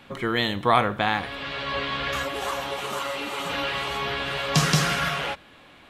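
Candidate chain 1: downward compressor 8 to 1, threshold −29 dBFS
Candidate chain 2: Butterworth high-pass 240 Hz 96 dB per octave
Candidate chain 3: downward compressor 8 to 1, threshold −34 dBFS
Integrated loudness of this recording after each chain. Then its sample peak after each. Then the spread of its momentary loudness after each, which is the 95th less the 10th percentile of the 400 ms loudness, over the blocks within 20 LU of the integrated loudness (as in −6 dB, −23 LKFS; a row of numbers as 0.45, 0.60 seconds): −32.5, −26.0, −36.5 LKFS; −16.0, −5.0, −20.0 dBFS; 3, 8, 3 LU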